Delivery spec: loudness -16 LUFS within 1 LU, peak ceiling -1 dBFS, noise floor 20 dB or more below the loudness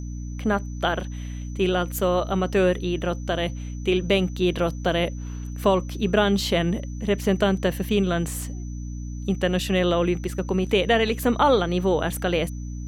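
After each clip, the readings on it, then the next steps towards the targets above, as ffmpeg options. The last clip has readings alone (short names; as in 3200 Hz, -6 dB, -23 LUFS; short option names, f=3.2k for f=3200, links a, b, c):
hum 60 Hz; harmonics up to 300 Hz; hum level -30 dBFS; steady tone 6000 Hz; tone level -49 dBFS; loudness -23.5 LUFS; peak -6.0 dBFS; loudness target -16.0 LUFS
-> -af "bandreject=f=60:t=h:w=4,bandreject=f=120:t=h:w=4,bandreject=f=180:t=h:w=4,bandreject=f=240:t=h:w=4,bandreject=f=300:t=h:w=4"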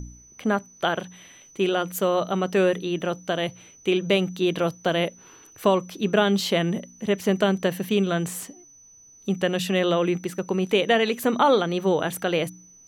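hum none; steady tone 6000 Hz; tone level -49 dBFS
-> -af "bandreject=f=6k:w=30"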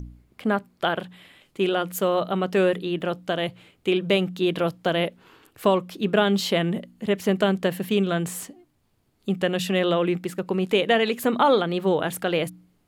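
steady tone none; loudness -24.0 LUFS; peak -6.5 dBFS; loudness target -16.0 LUFS
-> -af "volume=8dB,alimiter=limit=-1dB:level=0:latency=1"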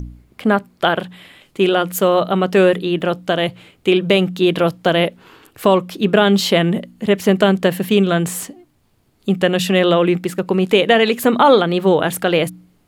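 loudness -16.5 LUFS; peak -1.0 dBFS; noise floor -59 dBFS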